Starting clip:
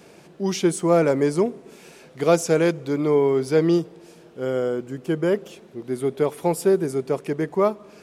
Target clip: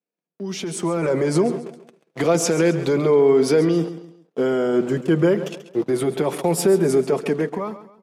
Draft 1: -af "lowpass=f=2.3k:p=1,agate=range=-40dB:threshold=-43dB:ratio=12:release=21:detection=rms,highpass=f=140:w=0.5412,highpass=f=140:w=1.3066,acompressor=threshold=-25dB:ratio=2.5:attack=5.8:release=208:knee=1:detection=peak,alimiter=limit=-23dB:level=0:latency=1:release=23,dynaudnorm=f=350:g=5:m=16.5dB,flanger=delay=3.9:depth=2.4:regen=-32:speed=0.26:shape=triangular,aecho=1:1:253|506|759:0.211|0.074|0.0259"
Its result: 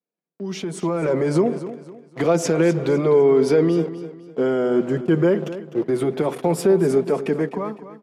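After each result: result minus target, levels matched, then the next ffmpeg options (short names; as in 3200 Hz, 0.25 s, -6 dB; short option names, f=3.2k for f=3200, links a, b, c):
echo 0.117 s late; 8000 Hz band -6.0 dB
-af "lowpass=f=2.3k:p=1,agate=range=-40dB:threshold=-43dB:ratio=12:release=21:detection=rms,highpass=f=140:w=0.5412,highpass=f=140:w=1.3066,acompressor=threshold=-25dB:ratio=2.5:attack=5.8:release=208:knee=1:detection=peak,alimiter=limit=-23dB:level=0:latency=1:release=23,dynaudnorm=f=350:g=5:m=16.5dB,flanger=delay=3.9:depth=2.4:regen=-32:speed=0.26:shape=triangular,aecho=1:1:136|272|408:0.211|0.074|0.0259"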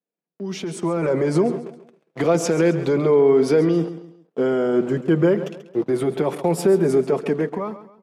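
8000 Hz band -6.0 dB
-af "lowpass=f=6.3k:p=1,agate=range=-40dB:threshold=-43dB:ratio=12:release=21:detection=rms,highpass=f=140:w=0.5412,highpass=f=140:w=1.3066,acompressor=threshold=-25dB:ratio=2.5:attack=5.8:release=208:knee=1:detection=peak,alimiter=limit=-23dB:level=0:latency=1:release=23,dynaudnorm=f=350:g=5:m=16.5dB,flanger=delay=3.9:depth=2.4:regen=-32:speed=0.26:shape=triangular,aecho=1:1:136|272|408:0.211|0.074|0.0259"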